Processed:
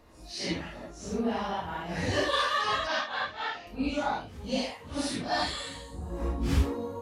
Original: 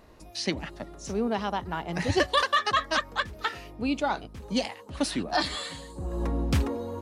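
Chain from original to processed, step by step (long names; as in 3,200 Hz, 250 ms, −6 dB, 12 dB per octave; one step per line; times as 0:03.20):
random phases in long frames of 200 ms
0:02.87–0:03.67: loudspeaker in its box 160–5,800 Hz, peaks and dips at 160 Hz −8 dB, 330 Hz −7 dB, 750 Hz +9 dB, 1,300 Hz −3 dB
notch filter 370 Hz, Q 12
level −2 dB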